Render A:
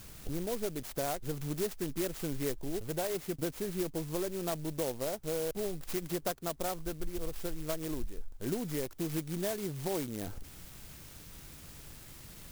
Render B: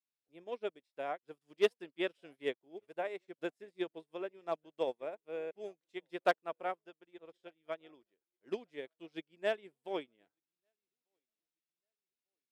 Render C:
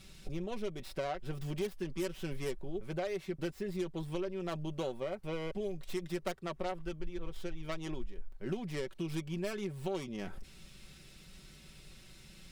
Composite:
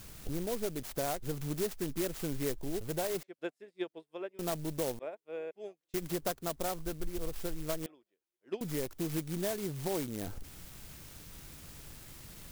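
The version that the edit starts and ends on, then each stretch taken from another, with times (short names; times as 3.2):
A
3.23–4.39 from B
4.99–5.94 from B
7.86–8.61 from B
not used: C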